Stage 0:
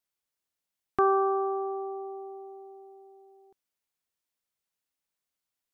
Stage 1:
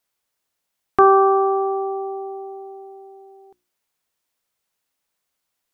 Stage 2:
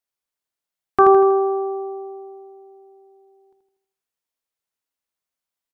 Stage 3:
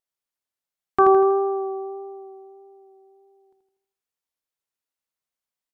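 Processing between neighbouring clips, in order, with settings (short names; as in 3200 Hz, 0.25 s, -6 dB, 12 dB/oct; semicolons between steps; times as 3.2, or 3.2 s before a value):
bell 830 Hz +2.5 dB 2.4 oct; notches 60/120/180/240/300/360 Hz; gain +9 dB
feedback echo 80 ms, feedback 50%, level -6 dB; upward expander 1.5:1, over -32 dBFS
vibrato 1.6 Hz 15 cents; gain -3 dB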